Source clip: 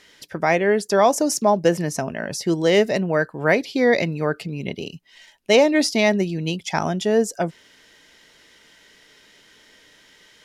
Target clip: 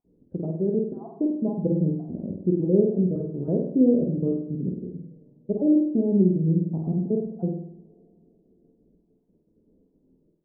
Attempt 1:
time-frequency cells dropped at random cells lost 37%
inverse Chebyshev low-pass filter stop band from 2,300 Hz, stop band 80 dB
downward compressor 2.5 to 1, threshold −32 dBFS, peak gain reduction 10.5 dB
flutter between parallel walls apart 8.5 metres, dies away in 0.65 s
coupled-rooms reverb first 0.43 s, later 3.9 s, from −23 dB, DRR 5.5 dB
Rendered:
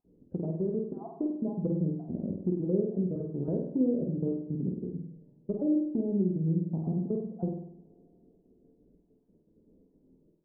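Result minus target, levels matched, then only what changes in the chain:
downward compressor: peak gain reduction +10.5 dB
remove: downward compressor 2.5 to 1, threshold −32 dBFS, peak gain reduction 10.5 dB

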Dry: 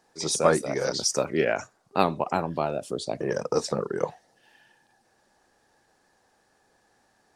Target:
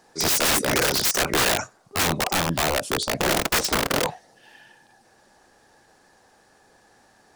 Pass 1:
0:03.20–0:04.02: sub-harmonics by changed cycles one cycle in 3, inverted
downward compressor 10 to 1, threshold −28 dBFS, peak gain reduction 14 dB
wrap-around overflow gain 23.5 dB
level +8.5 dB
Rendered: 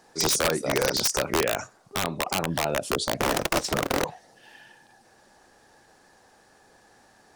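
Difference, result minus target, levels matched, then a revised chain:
downward compressor: peak gain reduction +14 dB
0:03.20–0:04.02: sub-harmonics by changed cycles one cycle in 3, inverted
wrap-around overflow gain 23.5 dB
level +8.5 dB

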